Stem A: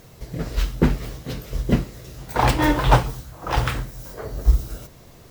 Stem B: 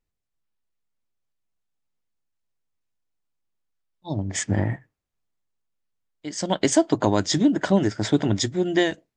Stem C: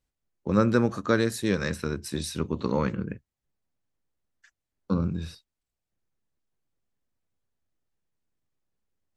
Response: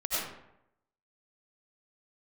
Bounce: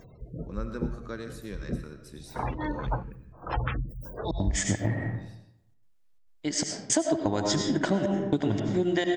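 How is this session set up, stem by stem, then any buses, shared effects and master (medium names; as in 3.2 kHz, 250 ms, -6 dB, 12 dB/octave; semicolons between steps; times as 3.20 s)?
-2.0 dB, 0.00 s, no send, spectral gate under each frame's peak -20 dB strong; auto duck -11 dB, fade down 0.60 s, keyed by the third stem
+1.0 dB, 0.20 s, send -8.5 dB, trance gate "xxx.xxxx...xxx.x" 168 bpm -60 dB
-16.5 dB, 0.00 s, send -13.5 dB, none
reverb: on, RT60 0.80 s, pre-delay 55 ms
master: compression 5:1, threshold -23 dBFS, peak gain reduction 13 dB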